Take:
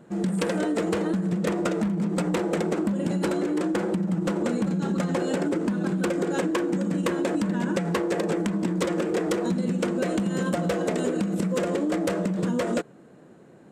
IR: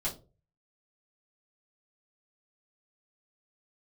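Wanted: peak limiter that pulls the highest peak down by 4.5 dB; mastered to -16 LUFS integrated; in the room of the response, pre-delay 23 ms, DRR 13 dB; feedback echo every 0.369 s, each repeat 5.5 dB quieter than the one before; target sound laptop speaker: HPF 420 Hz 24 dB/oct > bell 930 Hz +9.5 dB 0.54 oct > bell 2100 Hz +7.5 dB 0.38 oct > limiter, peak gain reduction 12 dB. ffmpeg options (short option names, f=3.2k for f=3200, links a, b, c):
-filter_complex "[0:a]alimiter=limit=-19dB:level=0:latency=1,aecho=1:1:369|738|1107|1476|1845|2214|2583:0.531|0.281|0.149|0.079|0.0419|0.0222|0.0118,asplit=2[a][b];[1:a]atrim=start_sample=2205,adelay=23[c];[b][c]afir=irnorm=-1:irlink=0,volume=-17dB[d];[a][d]amix=inputs=2:normalize=0,highpass=f=420:w=0.5412,highpass=f=420:w=1.3066,equalizer=f=930:t=o:w=0.54:g=9.5,equalizer=f=2.1k:t=o:w=0.38:g=7.5,volume=18dB,alimiter=limit=-7dB:level=0:latency=1"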